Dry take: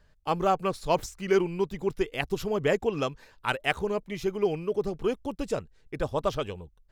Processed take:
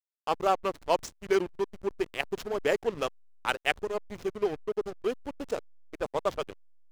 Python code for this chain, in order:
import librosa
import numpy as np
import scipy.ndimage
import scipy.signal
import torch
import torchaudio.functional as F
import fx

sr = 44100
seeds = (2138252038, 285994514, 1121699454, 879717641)

y = fx.bass_treble(x, sr, bass_db=-11, treble_db=5)
y = fx.backlash(y, sr, play_db=-28.0)